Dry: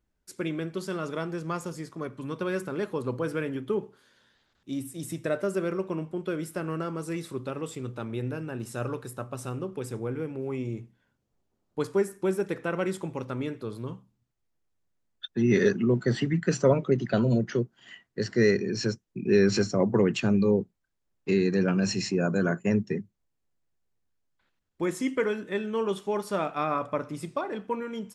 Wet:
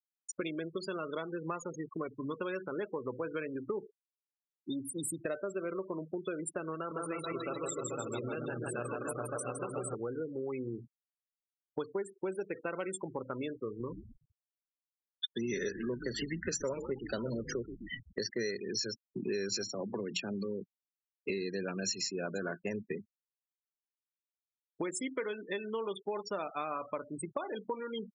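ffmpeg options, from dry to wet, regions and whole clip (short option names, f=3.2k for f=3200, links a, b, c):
-filter_complex "[0:a]asettb=1/sr,asplit=3[a][b][c];[a]atrim=end=6.754[d];[b]atrim=start=6.75:end=9.95,asetpts=PTS-STARTPTS,afade=t=in:d=0.004:c=qsin,afade=t=out:st=3.196:d=0.004:c=qsin,equalizer=f=300:w=0.74:g=-3.5,aecho=1:1:160|304|433.6|550.2|655.2|749.7|834.7|911.3:0.794|0.631|0.501|0.398|0.316|0.251|0.2|0.158,atrim=end_sample=141120[e];[c]atrim=start=9.946[f];[d][e]acrossfade=d=0.004:c1=hsin:c2=qsin[g];[g][f]acrossfade=d=0.004:c1=qsin:c2=hsin,asettb=1/sr,asplit=3[h][i][j];[h]atrim=end=13.664[k];[i]atrim=start=13.66:end=18.28,asetpts=PTS-STARTPTS,afade=t=in:d=0.004:c=qsin,afade=t=out:st=4.616:d=0.004:c=qsin,bandreject=f=710:w=6.3,asplit=7[l][m][n][o][p][q][r];[m]adelay=127,afreqshift=-78,volume=-12dB[s];[n]adelay=254,afreqshift=-156,volume=-17.5dB[t];[o]adelay=381,afreqshift=-234,volume=-23dB[u];[p]adelay=508,afreqshift=-312,volume=-28.5dB[v];[q]adelay=635,afreqshift=-390,volume=-34.1dB[w];[r]adelay=762,afreqshift=-468,volume=-39.6dB[x];[l][s][t][u][v][w][x]amix=inputs=7:normalize=0,atrim=end_sample=203742[y];[j]atrim=start=18.276[z];[k][y]acrossfade=d=0.004:c1=hsin:c2=qsin[aa];[aa][z]acrossfade=d=0.004:c1=qsin:c2=hsin,asettb=1/sr,asplit=3[ab][ac][ad];[ab]atrim=end=19.684[ae];[ac]atrim=start=19.68:end=21.3,asetpts=PTS-STARTPTS,afade=t=in:d=0.004:c=qsin,afade=t=out:st=1.616:d=0.004:c=qsin,highpass=130,lowpass=6.5k,bandreject=f=60:t=h:w=6,bandreject=f=120:t=h:w=6,bandreject=f=180:t=h:w=6,acrossover=split=230|3000[af][ag][ah];[ag]acompressor=threshold=-30dB:ratio=4:attack=3.2:release=140:knee=2.83:detection=peak[ai];[af][ai][ah]amix=inputs=3:normalize=0[aj];[ad]atrim=start=21.296[ak];[ae][aj]acrossfade=d=0.004:c1=hsin:c2=qsin[al];[al][ak]acrossfade=d=0.004:c1=qsin:c2=hsin,afftfilt=real='re*gte(hypot(re,im),0.02)':imag='im*gte(hypot(re,im),0.02)':win_size=1024:overlap=0.75,bass=f=250:g=-11,treble=f=4k:g=14,acompressor=threshold=-43dB:ratio=5,volume=7.5dB"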